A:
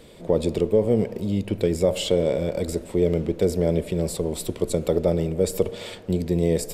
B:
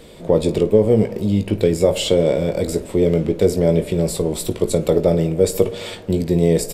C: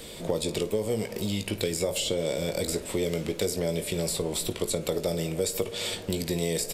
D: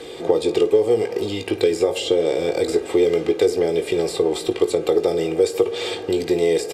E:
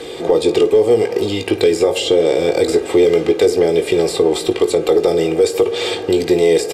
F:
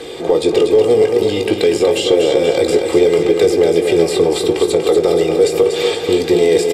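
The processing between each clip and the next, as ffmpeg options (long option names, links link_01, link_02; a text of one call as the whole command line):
ffmpeg -i in.wav -af "aecho=1:1:19|53:0.376|0.126,volume=5dB" out.wav
ffmpeg -i in.wav -filter_complex "[0:a]highshelf=frequency=2400:gain=11,acrossover=split=670|3900[link_01][link_02][link_03];[link_01]acompressor=threshold=-27dB:ratio=4[link_04];[link_02]acompressor=threshold=-33dB:ratio=4[link_05];[link_03]acompressor=threshold=-31dB:ratio=4[link_06];[link_04][link_05][link_06]amix=inputs=3:normalize=0,volume=-2.5dB" out.wav
ffmpeg -i in.wav -af "highpass=370,aemphasis=mode=reproduction:type=riaa,aecho=1:1:2.5:0.72,volume=7.5dB" out.wav
ffmpeg -i in.wav -af "apsyclip=11dB,volume=-5dB" out.wav
ffmpeg -i in.wav -af "aecho=1:1:240|480|720|960|1200|1440|1680:0.473|0.27|0.154|0.0876|0.0499|0.0285|0.0162" out.wav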